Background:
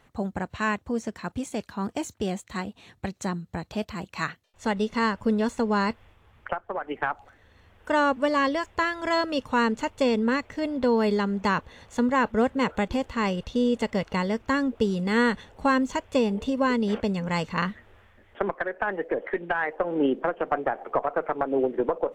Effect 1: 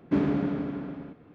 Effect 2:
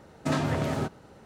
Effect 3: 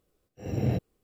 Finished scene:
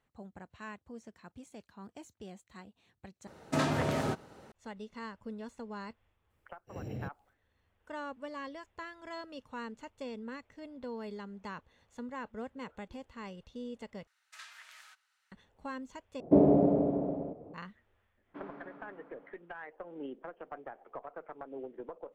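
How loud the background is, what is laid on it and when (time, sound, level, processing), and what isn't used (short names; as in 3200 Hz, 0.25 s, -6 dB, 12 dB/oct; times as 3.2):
background -19 dB
3.27 replace with 2 -1 dB + low shelf 170 Hz -6.5 dB
6.3 add 3 -7.5 dB + limiter -25 dBFS
14.07 replace with 2 -13 dB + HPF 1500 Hz 24 dB/oct
16.2 replace with 1 + EQ curve 260 Hz 0 dB, 640 Hz +13 dB, 1500 Hz -19 dB
18.23 add 1 -11.5 dB, fades 0.10 s + band-pass 1100 Hz, Q 1.2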